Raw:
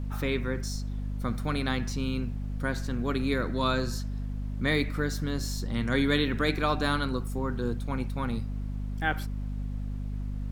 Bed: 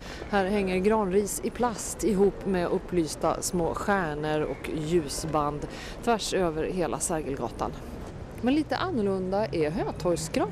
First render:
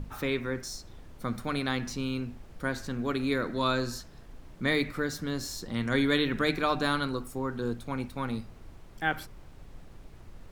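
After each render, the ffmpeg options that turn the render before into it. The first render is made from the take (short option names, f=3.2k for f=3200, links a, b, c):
-af "bandreject=f=50:t=h:w=6,bandreject=f=100:t=h:w=6,bandreject=f=150:t=h:w=6,bandreject=f=200:t=h:w=6,bandreject=f=250:t=h:w=6"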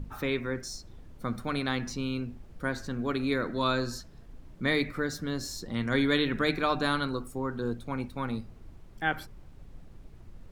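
-af "afftdn=nr=6:nf=-50"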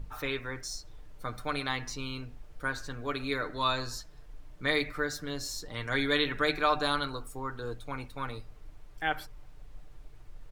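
-af "equalizer=f=200:t=o:w=1.6:g=-13,aecho=1:1:6.7:0.5"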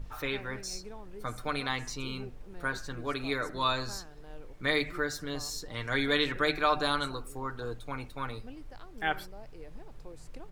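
-filter_complex "[1:a]volume=-23.5dB[a];[0:a][a]amix=inputs=2:normalize=0"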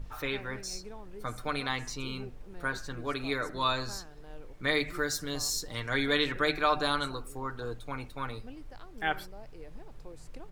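-filter_complex "[0:a]asettb=1/sr,asplit=3[a][b][c];[a]atrim=end=4.884[d];[b]atrim=start=4.88:end=5.8,asetpts=PTS-STARTPTS,afade=t=in:d=0.004:c=qsin,afade=t=out:st=0.916:d=0.004:c=qsin,bass=f=250:g=1,treble=f=4k:g=8[e];[c]atrim=start=5.796[f];[d][e]acrossfade=d=0.004:c1=hsin:c2=qsin[g];[g][f]acrossfade=d=0.004:c1=qsin:c2=hsin"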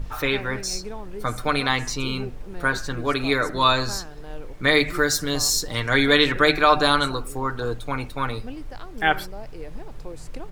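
-af "volume=10.5dB,alimiter=limit=-3dB:level=0:latency=1"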